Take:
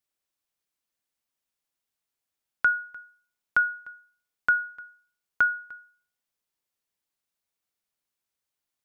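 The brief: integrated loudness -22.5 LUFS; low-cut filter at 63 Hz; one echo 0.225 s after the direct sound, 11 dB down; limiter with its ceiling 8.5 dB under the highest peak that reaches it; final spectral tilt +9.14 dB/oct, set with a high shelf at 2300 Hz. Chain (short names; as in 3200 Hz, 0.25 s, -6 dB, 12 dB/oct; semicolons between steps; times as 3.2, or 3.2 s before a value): HPF 63 Hz; high shelf 2300 Hz +4.5 dB; limiter -19.5 dBFS; echo 0.225 s -11 dB; gain +7.5 dB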